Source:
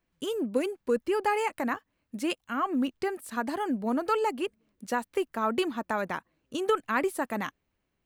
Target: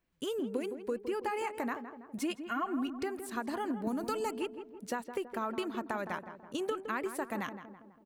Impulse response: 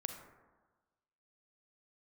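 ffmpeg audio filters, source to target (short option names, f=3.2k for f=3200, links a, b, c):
-filter_complex "[0:a]asettb=1/sr,asplit=3[a][b][c];[a]atrim=end=2.184[d];[b]atrim=start=2.18:end=3.03,asetpts=PTS-STARTPTS,afade=t=in:d=0.004:c=qsin,afade=t=out:st=0.846:d=0.004:c=qsin,aecho=1:1:2.8:0.94,atrim=end_sample=37485[e];[c]atrim=start=3.026[f];[d][e]acrossfade=d=0.004:c1=hsin:c2=qsin[g];[g][f]acrossfade=d=0.004:c1=qsin:c2=hsin,asettb=1/sr,asplit=3[h][i][j];[h]atrim=end=3.874[k];[i]atrim=start=3.87:end=4.31,asetpts=PTS-STARTPTS,afade=t=in:d=0.004:c=qsin,afade=t=out:st=0.436:d=0.004:c=qsin,bass=f=250:g=9,treble=f=4k:g=11[l];[j]atrim=start=4.306[m];[k][l]acrossfade=d=0.004:c1=hsin:c2=qsin[n];[n][m]acrossfade=d=0.004:c1=qsin:c2=hsin,acompressor=threshold=-29dB:ratio=6,asplit=2[o][p];[p]adelay=164,lowpass=f=1.4k:p=1,volume=-9dB,asplit=2[q][r];[r]adelay=164,lowpass=f=1.4k:p=1,volume=0.55,asplit=2[s][t];[t]adelay=164,lowpass=f=1.4k:p=1,volume=0.55,asplit=2[u][v];[v]adelay=164,lowpass=f=1.4k:p=1,volume=0.55,asplit=2[w][x];[x]adelay=164,lowpass=f=1.4k:p=1,volume=0.55,asplit=2[y][z];[z]adelay=164,lowpass=f=1.4k:p=1,volume=0.55[aa];[o][q][s][u][w][y][aa]amix=inputs=7:normalize=0,volume=-2.5dB"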